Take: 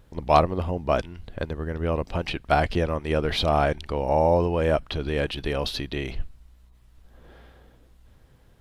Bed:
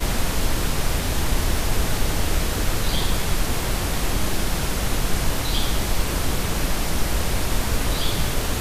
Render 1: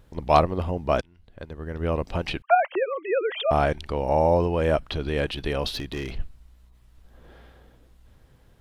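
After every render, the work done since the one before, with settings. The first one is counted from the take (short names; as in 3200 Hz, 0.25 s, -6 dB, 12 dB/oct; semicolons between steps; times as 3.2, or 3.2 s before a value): 1.01–1.86 fade in quadratic, from -17.5 dB; 2.42–3.51 sine-wave speech; 5.74–6.19 hard clip -26 dBFS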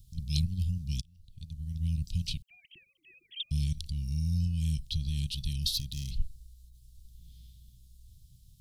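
inverse Chebyshev band-stop 420–1500 Hz, stop band 60 dB; high shelf 4700 Hz +7 dB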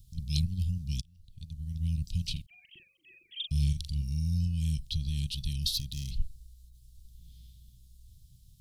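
2.32–4.02 doubler 42 ms -6 dB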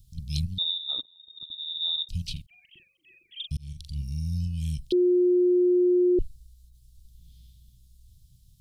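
0.58–2.09 inverted band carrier 3700 Hz; 3.57–4.01 fade in; 4.92–6.19 bleep 358 Hz -17.5 dBFS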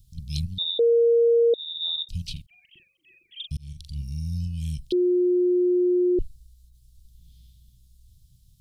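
0.79–1.54 bleep 467 Hz -15 dBFS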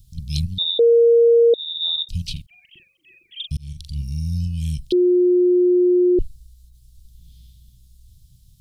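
gain +5.5 dB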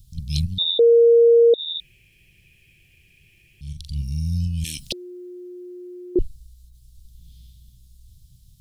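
1.8–3.61 room tone; 4.64–6.16 spectral compressor 4:1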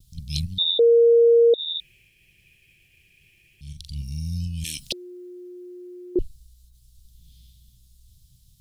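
expander -54 dBFS; low shelf 340 Hz -5.5 dB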